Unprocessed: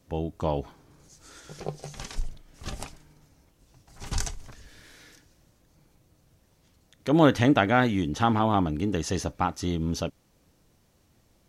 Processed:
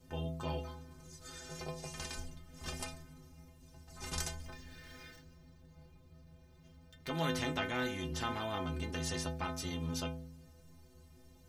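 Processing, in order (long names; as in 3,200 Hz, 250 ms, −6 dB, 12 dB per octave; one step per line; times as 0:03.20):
0:04.45–0:07.09: running median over 5 samples
low-shelf EQ 190 Hz +9.5 dB
stiff-string resonator 76 Hz, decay 0.67 s, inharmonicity 0.03
every bin compressed towards the loudest bin 2 to 1
level −6 dB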